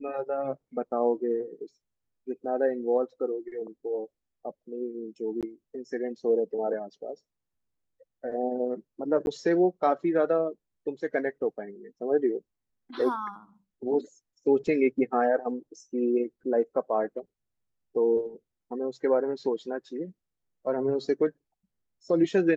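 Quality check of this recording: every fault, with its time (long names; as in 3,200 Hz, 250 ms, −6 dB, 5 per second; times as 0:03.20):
0:05.41–0:05.43: drop-out 17 ms
0:09.26–0:09.27: drop-out 11 ms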